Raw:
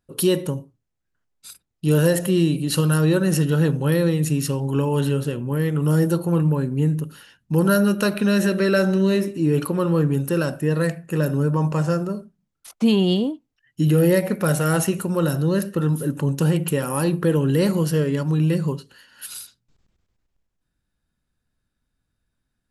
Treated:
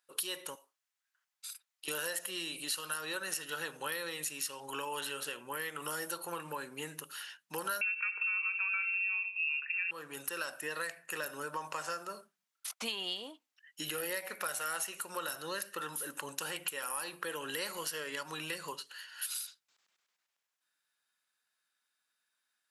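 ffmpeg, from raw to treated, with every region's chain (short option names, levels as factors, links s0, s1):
-filter_complex "[0:a]asettb=1/sr,asplit=3[s0][s1][s2];[s0]atrim=end=0.554[s3];[s1]atrim=start=0.55:end=1.88,asetpts=PTS-STARTPTS,afade=t=in:d=0.004:c=qsin,afade=t=out:st=1.326:d=0.004:c=qsin,highpass=640,acompressor=threshold=0.00501:ratio=2.5:attack=3.2:release=140:knee=1:detection=peak[s4];[s2]atrim=start=1.876[s5];[s3][s4]acrossfade=d=0.004:c1=hsin:c2=qsin[s6];[s6][s5]acrossfade=d=0.004:c1=qsin:c2=hsin,asettb=1/sr,asplit=3[s7][s8][s9];[s7]atrim=end=7.814[s10];[s8]atrim=start=7.81:end=9.91,asetpts=PTS-STARTPTS,afade=t=in:d=0.004:c=qsin,afade=t=out:st=2.096:d=0.004:c=qsin,highpass=62,lowpass=f=2500:t=q:w=0.5098,lowpass=f=2500:t=q:w=0.6013,lowpass=f=2500:t=q:w=0.9,lowpass=f=2500:t=q:w=2.563,afreqshift=-2900[s11];[s9]atrim=start=9.906[s12];[s10][s11]acrossfade=d=0.004:c1=hsin:c2=qsin[s13];[s13][s12]acrossfade=d=0.004:c1=qsin:c2=hsin,highpass=1200,acompressor=threshold=0.0112:ratio=4,volume=1.41"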